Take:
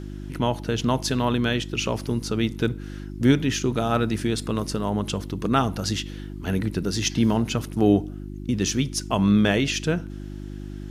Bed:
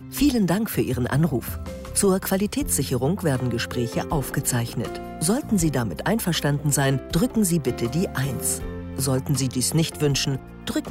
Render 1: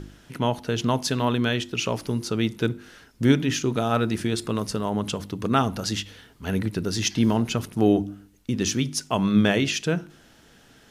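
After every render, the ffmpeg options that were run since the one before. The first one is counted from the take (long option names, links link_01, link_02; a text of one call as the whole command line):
ffmpeg -i in.wav -af "bandreject=frequency=50:width_type=h:width=4,bandreject=frequency=100:width_type=h:width=4,bandreject=frequency=150:width_type=h:width=4,bandreject=frequency=200:width_type=h:width=4,bandreject=frequency=250:width_type=h:width=4,bandreject=frequency=300:width_type=h:width=4,bandreject=frequency=350:width_type=h:width=4" out.wav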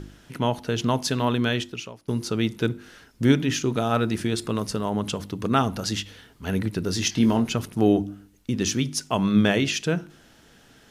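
ffmpeg -i in.wav -filter_complex "[0:a]asettb=1/sr,asplit=3[link_01][link_02][link_03];[link_01]atrim=end=6.844[link_04];[link_02]atrim=start=6.84:end=7.48,asetpts=PTS-STARTPTS,afade=type=in:duration=0.004:curve=qsin,afade=type=out:start_time=0.636:duration=0.004:curve=qsin,asplit=2[link_05][link_06];[link_06]adelay=22,volume=-9.5dB[link_07];[link_05][link_07]amix=inputs=2:normalize=0,atrim=end_sample=28224[link_08];[link_03]atrim=start=7.476[link_09];[link_04][link_08]acrossfade=duration=0.004:curve1=hsin:curve2=qsin[link_10];[link_10][link_09]acrossfade=duration=0.004:curve1=qsin:curve2=hsin,asplit=2[link_11][link_12];[link_11]atrim=end=2.08,asetpts=PTS-STARTPTS,afade=type=out:start_time=1.61:duration=0.47:curve=qua:silence=0.0668344[link_13];[link_12]atrim=start=2.08,asetpts=PTS-STARTPTS,afade=type=in:duration=0.004:curve=hsin:silence=0.0668344[link_14];[link_13][link_14]concat=n=2:v=0:a=1" out.wav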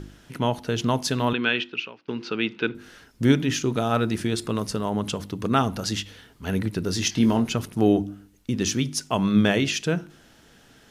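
ffmpeg -i in.wav -filter_complex "[0:a]asettb=1/sr,asplit=3[link_01][link_02][link_03];[link_01]atrim=end=1.334[link_04];[link_02]atrim=start=1.33:end=2.75,asetpts=PTS-STARTPTS,afade=type=in:duration=0.004:curve=qsin,afade=type=out:start_time=1.416:duration=0.004:curve=qsin,highpass=250,equalizer=frequency=620:width_type=q:width=4:gain=-6,equalizer=frequency=1500:width_type=q:width=4:gain=5,equalizer=frequency=2600:width_type=q:width=4:gain=9,lowpass=frequency=4300:width=0.5412,lowpass=frequency=4300:width=1.3066[link_05];[link_03]atrim=start=2.746[link_06];[link_04][link_05]acrossfade=duration=0.004:curve1=hsin:curve2=qsin[link_07];[link_07][link_06]acrossfade=duration=0.004:curve1=qsin:curve2=hsin" out.wav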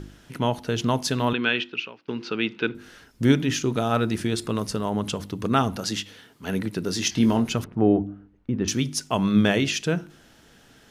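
ffmpeg -i in.wav -filter_complex "[0:a]asettb=1/sr,asplit=3[link_01][link_02][link_03];[link_01]atrim=end=5.764[link_04];[link_02]atrim=start=5.76:end=7.12,asetpts=PTS-STARTPTS,afade=type=in:duration=0.004:curve=qsin,afade=type=out:start_time=1.356:duration=0.004:curve=qsin,highpass=140[link_05];[link_03]atrim=start=7.116[link_06];[link_04][link_05]acrossfade=duration=0.004:curve1=hsin:curve2=qsin[link_07];[link_07][link_06]acrossfade=duration=0.004:curve1=qsin:curve2=hsin,asettb=1/sr,asplit=3[link_08][link_09][link_10];[link_08]atrim=end=7.644[link_11];[link_09]atrim=start=7.64:end=8.68,asetpts=PTS-STARTPTS,afade=type=in:duration=0.004:curve=qsin,afade=type=out:start_time=1.036:duration=0.004:curve=qsin,lowpass=1500[link_12];[link_10]atrim=start=8.676[link_13];[link_11][link_12]acrossfade=duration=0.004:curve1=hsin:curve2=qsin[link_14];[link_14][link_13]acrossfade=duration=0.004:curve1=qsin:curve2=hsin" out.wav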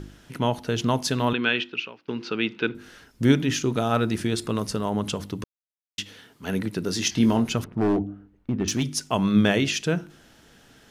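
ffmpeg -i in.wav -filter_complex "[0:a]asettb=1/sr,asplit=3[link_01][link_02][link_03];[link_01]atrim=end=7.594[link_04];[link_02]atrim=start=7.59:end=8.9,asetpts=PTS-STARTPTS,afade=type=in:duration=0.004:curve=qsin,afade=type=out:start_time=1.306:duration=0.004:curve=qsin,volume=18dB,asoftclip=hard,volume=-18dB[link_05];[link_03]atrim=start=8.896[link_06];[link_04][link_05]acrossfade=duration=0.004:curve1=hsin:curve2=qsin[link_07];[link_07][link_06]acrossfade=duration=0.004:curve1=qsin:curve2=hsin,asplit=3[link_08][link_09][link_10];[link_08]atrim=end=5.44,asetpts=PTS-STARTPTS,afade=type=out:start_time=5.436:duration=0.004:curve=hsin[link_11];[link_09]atrim=start=5.44:end=5.98,asetpts=PTS-STARTPTS,volume=0[link_12];[link_10]atrim=start=5.98,asetpts=PTS-STARTPTS,afade=type=in:duration=0.004:curve=hsin[link_13];[link_11][link_12][link_13]concat=n=3:v=0:a=1" out.wav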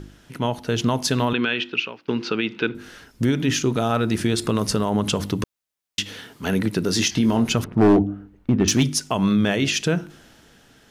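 ffmpeg -i in.wav -af "dynaudnorm=framelen=100:gausssize=17:maxgain=11.5dB,alimiter=limit=-10.5dB:level=0:latency=1:release=148" out.wav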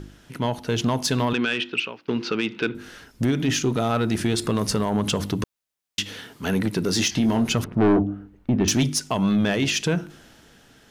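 ffmpeg -i in.wav -af "asoftclip=type=tanh:threshold=-13dB" out.wav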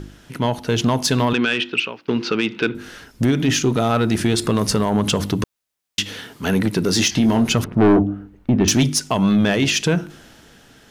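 ffmpeg -i in.wav -af "volume=4.5dB" out.wav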